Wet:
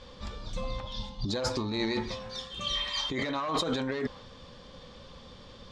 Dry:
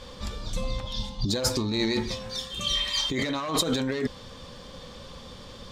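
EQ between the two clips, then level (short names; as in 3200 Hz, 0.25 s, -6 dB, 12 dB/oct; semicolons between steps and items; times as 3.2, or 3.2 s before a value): LPF 5600 Hz 12 dB/oct; dynamic EQ 970 Hz, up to +6 dB, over -44 dBFS, Q 0.71; -5.5 dB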